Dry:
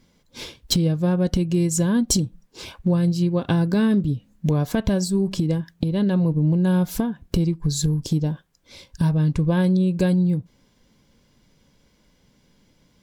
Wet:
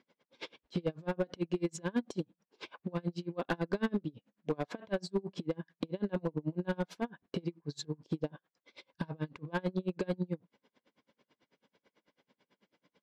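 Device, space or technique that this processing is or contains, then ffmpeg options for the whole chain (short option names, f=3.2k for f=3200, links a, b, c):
helicopter radio: -af "highpass=340,lowpass=2.9k,aeval=exprs='val(0)*pow(10,-33*(0.5-0.5*cos(2*PI*9.1*n/s))/20)':c=same,asoftclip=type=hard:threshold=-23.5dB"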